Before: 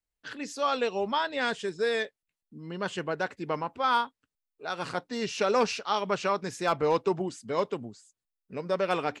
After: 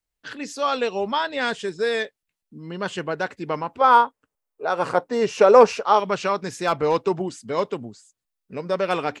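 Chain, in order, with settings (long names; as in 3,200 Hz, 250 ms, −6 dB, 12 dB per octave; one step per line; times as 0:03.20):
0:03.81–0:06.00: octave-band graphic EQ 500/1,000/4,000 Hz +9/+6/−6 dB
level +4.5 dB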